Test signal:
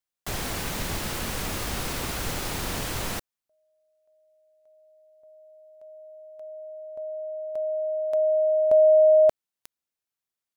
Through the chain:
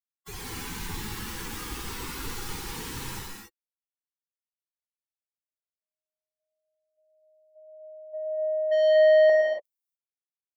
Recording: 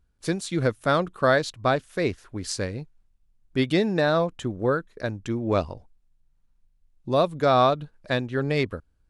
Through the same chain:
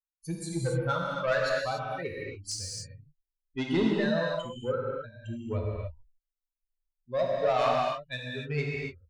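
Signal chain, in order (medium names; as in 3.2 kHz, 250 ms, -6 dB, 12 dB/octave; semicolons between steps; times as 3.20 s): expander on every frequency bin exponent 3; saturation -22.5 dBFS; gated-style reverb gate 310 ms flat, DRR -2.5 dB; trim -1 dB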